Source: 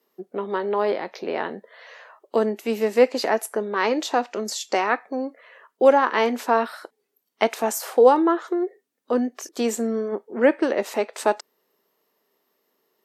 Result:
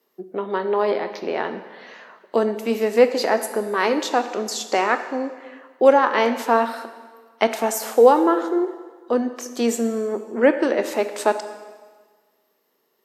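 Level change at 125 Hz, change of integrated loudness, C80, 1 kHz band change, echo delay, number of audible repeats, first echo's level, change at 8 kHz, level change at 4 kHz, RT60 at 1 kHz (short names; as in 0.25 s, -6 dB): n/a, +2.0 dB, 12.0 dB, +2.0 dB, none, none, none, +2.0 dB, +2.0 dB, 1.5 s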